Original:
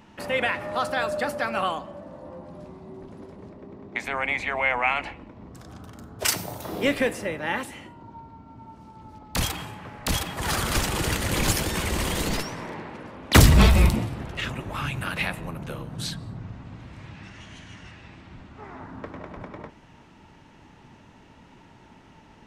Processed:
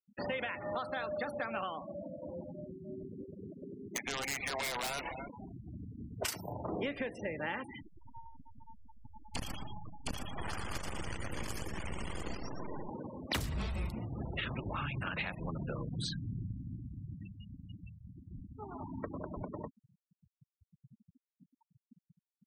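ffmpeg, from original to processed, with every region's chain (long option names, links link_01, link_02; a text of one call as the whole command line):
ffmpeg -i in.wav -filter_complex "[0:a]asettb=1/sr,asplit=3[link_01][link_02][link_03];[link_01]atrim=end=2.504[link_04];[link_02]atrim=start=2.5:end=5.54,asetpts=PTS-STARTPTS,afade=type=in:duration=0.004:curve=qsin,afade=type=out:start_time=3.036:duration=0.004:curve=qsin,lowshelf=frequency=190:gain=-2.5,aeval=exprs='(mod(8.91*val(0)+1,2)-1)/8.91':channel_layout=same,asplit=2[link_05][link_06];[link_06]adelay=286,lowpass=frequency=4300:poles=1,volume=-12.5dB,asplit=2[link_07][link_08];[link_08]adelay=286,lowpass=frequency=4300:poles=1,volume=0.4,asplit=2[link_09][link_10];[link_10]adelay=286,lowpass=frequency=4300:poles=1,volume=0.4,asplit=2[link_11][link_12];[link_12]adelay=286,lowpass=frequency=4300:poles=1,volume=0.4[link_13];[link_05][link_07][link_09][link_11][link_13]amix=inputs=5:normalize=0,atrim=end_sample=134064[link_14];[link_03]atrim=start=5.536[link_15];[link_04][link_14]acrossfade=duration=0.004:curve1=hsin:curve2=qsin[link_16];[link_16][link_15]acrossfade=duration=0.004:curve1=qsin:curve2=hsin,asettb=1/sr,asplit=3[link_17][link_18][link_19];[link_17]atrim=end=7.824[link_20];[link_18]atrim=start=7.82:end=12.89,asetpts=PTS-STARTPTS,afade=type=in:duration=0.004:curve=qsin,afade=type=out:start_time=5.066:duration=0.004:curve=qsin,bandreject=frequency=3800:width=5.1,aeval=exprs='max(val(0),0)':channel_layout=same,aecho=1:1:116|232|348|464:0.501|0.155|0.0482|0.0149,atrim=end_sample=223587[link_21];[link_19]atrim=start=12.886[link_22];[link_20][link_21]acrossfade=duration=0.004:curve1=hsin:curve2=qsin[link_23];[link_23][link_22]acrossfade=duration=0.004:curve1=qsin:curve2=hsin,afftfilt=real='re*gte(hypot(re,im),0.0251)':imag='im*gte(hypot(re,im),0.0251)':win_size=1024:overlap=0.75,acompressor=threshold=-32dB:ratio=12,volume=-1.5dB" out.wav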